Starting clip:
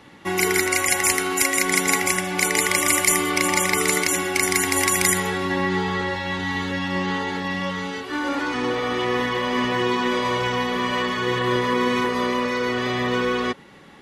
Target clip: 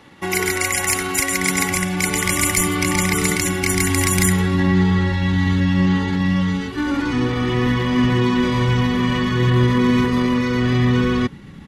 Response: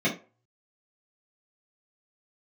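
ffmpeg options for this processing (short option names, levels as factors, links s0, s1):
-af "atempo=1.2,asubboost=boost=8.5:cutoff=190,acontrast=25,volume=0.631"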